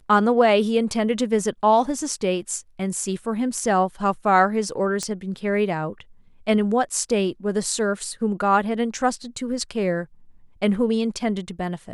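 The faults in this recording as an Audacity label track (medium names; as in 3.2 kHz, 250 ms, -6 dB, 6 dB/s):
5.030000	5.030000	pop -14 dBFS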